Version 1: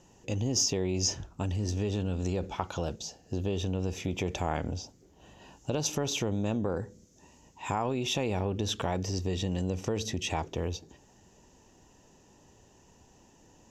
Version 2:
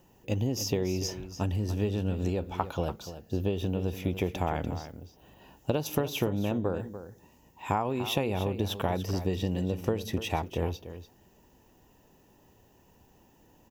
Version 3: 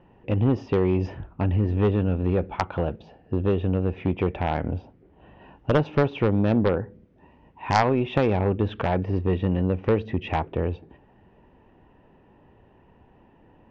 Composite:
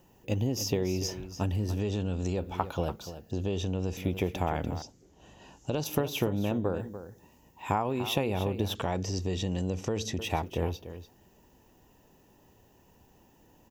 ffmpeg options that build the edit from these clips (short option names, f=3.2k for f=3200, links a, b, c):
-filter_complex "[0:a]asplit=4[a][b][c][d];[1:a]asplit=5[e][f][g][h][i];[e]atrim=end=1.802[j];[a]atrim=start=1.798:end=2.382[k];[f]atrim=start=2.378:end=3.312[l];[b]atrim=start=3.308:end=3.972[m];[g]atrim=start=3.968:end=4.822[n];[c]atrim=start=4.818:end=5.842[o];[h]atrim=start=5.838:end=8.752[p];[d]atrim=start=8.748:end=10.192[q];[i]atrim=start=10.188[r];[j][k]acrossfade=d=0.004:c1=hsin:c2=hsin[s];[s][l]acrossfade=d=0.004:c1=hsin:c2=hsin[t];[t][m]acrossfade=d=0.004:c1=hsin:c2=hsin[u];[u][n]acrossfade=d=0.004:c1=hsin:c2=hsin[v];[v][o]acrossfade=d=0.004:c1=hsin:c2=hsin[w];[w][p]acrossfade=d=0.004:c1=hsin:c2=hsin[x];[x][q]acrossfade=d=0.004:c1=hsin:c2=hsin[y];[y][r]acrossfade=d=0.004:c1=hsin:c2=hsin"